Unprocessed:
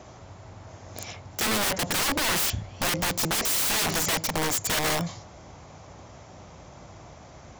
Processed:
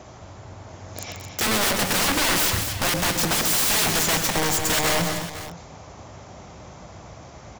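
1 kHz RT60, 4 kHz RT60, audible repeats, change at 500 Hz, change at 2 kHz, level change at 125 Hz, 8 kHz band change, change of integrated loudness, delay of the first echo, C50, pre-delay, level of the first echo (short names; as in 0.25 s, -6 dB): none, none, 4, +4.5 dB, +4.5 dB, +4.0 dB, +4.5 dB, +4.5 dB, 0.133 s, none, none, -9.0 dB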